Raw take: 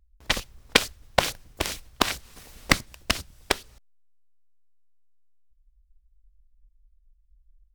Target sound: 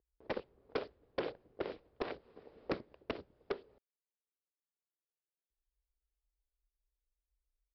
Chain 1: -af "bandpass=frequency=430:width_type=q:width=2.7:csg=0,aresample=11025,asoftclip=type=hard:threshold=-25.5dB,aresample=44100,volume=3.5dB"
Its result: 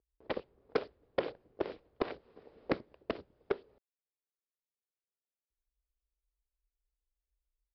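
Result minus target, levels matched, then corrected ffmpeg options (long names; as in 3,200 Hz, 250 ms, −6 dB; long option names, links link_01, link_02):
hard clipping: distortion −4 dB
-af "bandpass=frequency=430:width_type=q:width=2.7:csg=0,aresample=11025,asoftclip=type=hard:threshold=-33dB,aresample=44100,volume=3.5dB"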